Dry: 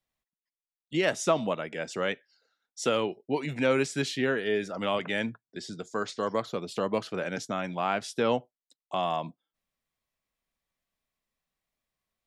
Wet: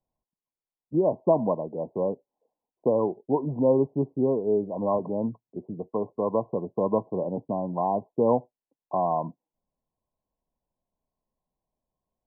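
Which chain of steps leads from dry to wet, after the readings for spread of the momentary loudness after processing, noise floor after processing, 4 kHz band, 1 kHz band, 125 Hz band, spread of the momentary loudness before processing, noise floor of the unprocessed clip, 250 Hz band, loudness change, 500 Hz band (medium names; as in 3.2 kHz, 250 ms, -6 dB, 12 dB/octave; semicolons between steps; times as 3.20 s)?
8 LU, under -85 dBFS, under -40 dB, +2.5 dB, +4.5 dB, 9 LU, under -85 dBFS, +4.5 dB, +3.0 dB, +4.5 dB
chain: brick-wall FIR low-pass 1.1 kHz; trim +4.5 dB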